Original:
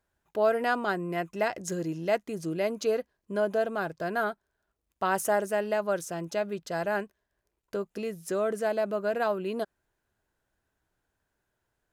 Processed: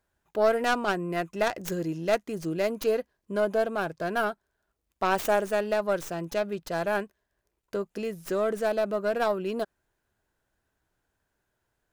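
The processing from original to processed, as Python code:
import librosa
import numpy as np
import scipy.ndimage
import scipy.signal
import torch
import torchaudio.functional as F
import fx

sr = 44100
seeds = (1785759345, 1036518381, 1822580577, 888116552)

y = fx.tracing_dist(x, sr, depth_ms=0.23)
y = F.gain(torch.from_numpy(y), 1.5).numpy()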